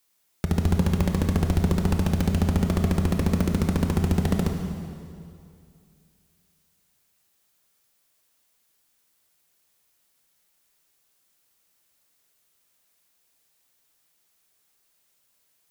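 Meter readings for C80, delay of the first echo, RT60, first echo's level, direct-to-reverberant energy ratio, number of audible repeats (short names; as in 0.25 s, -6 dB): 5.5 dB, none, 2.4 s, none, 3.5 dB, none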